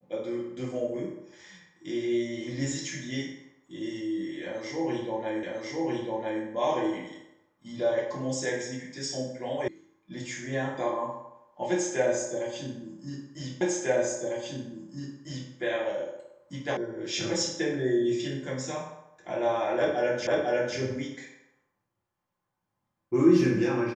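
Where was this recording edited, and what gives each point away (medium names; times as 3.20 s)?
5.43 s: repeat of the last 1 s
9.68 s: sound stops dead
13.61 s: repeat of the last 1.9 s
16.77 s: sound stops dead
20.27 s: repeat of the last 0.5 s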